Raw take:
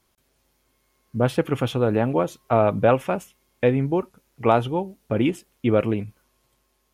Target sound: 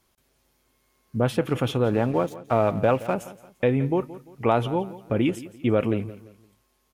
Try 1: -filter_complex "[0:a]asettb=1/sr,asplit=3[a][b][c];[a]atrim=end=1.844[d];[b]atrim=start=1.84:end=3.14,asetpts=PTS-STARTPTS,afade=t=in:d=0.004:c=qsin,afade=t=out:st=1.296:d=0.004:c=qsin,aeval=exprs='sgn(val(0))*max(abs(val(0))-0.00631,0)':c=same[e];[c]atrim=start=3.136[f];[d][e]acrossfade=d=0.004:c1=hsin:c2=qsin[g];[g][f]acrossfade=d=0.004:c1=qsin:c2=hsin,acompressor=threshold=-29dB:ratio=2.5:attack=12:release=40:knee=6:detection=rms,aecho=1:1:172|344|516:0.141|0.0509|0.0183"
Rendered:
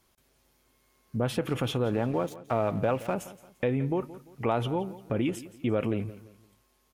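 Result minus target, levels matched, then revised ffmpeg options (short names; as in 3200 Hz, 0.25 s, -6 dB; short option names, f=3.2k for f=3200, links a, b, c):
compressor: peak gain reduction +6.5 dB
-filter_complex "[0:a]asettb=1/sr,asplit=3[a][b][c];[a]atrim=end=1.844[d];[b]atrim=start=1.84:end=3.14,asetpts=PTS-STARTPTS,afade=t=in:d=0.004:c=qsin,afade=t=out:st=1.296:d=0.004:c=qsin,aeval=exprs='sgn(val(0))*max(abs(val(0))-0.00631,0)':c=same[e];[c]atrim=start=3.136[f];[d][e]acrossfade=d=0.004:c1=hsin:c2=qsin[g];[g][f]acrossfade=d=0.004:c1=qsin:c2=hsin,acompressor=threshold=-18dB:ratio=2.5:attack=12:release=40:knee=6:detection=rms,aecho=1:1:172|344|516:0.141|0.0509|0.0183"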